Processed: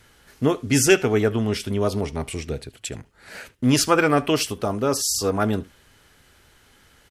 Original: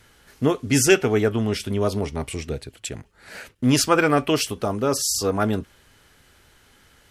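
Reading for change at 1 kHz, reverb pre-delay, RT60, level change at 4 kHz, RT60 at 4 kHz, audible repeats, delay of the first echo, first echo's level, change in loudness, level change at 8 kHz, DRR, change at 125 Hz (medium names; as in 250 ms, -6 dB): 0.0 dB, no reverb, no reverb, 0.0 dB, no reverb, 1, 75 ms, -22.0 dB, 0.0 dB, 0.0 dB, no reverb, 0.0 dB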